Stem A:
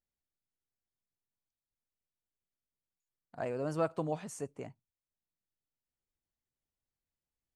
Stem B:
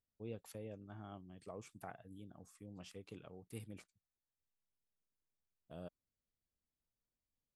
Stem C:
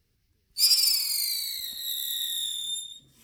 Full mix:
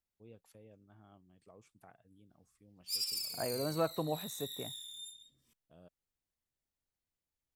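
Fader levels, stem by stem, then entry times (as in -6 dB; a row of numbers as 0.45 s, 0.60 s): -1.0 dB, -9.5 dB, -15.5 dB; 0.00 s, 0.00 s, 2.30 s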